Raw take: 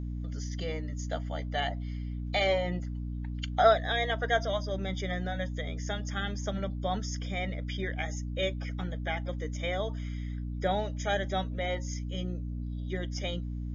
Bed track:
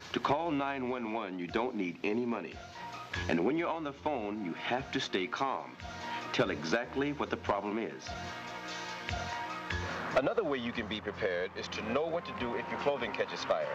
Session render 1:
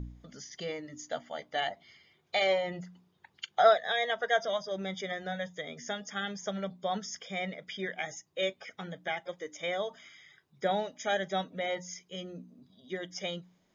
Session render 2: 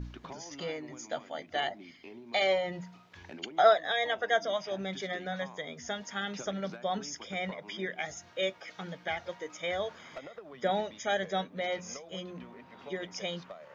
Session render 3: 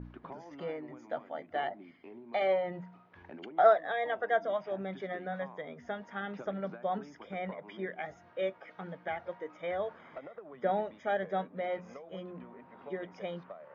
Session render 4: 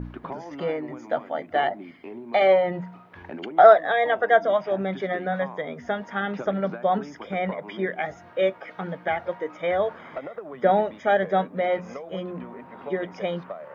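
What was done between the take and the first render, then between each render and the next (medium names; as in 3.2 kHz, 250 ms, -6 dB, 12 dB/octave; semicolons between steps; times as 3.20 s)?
de-hum 60 Hz, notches 5
add bed track -16 dB
low-pass 1.5 kHz 12 dB/octave; bass shelf 94 Hz -10.5 dB
trim +11 dB; peak limiter -2 dBFS, peak gain reduction 2 dB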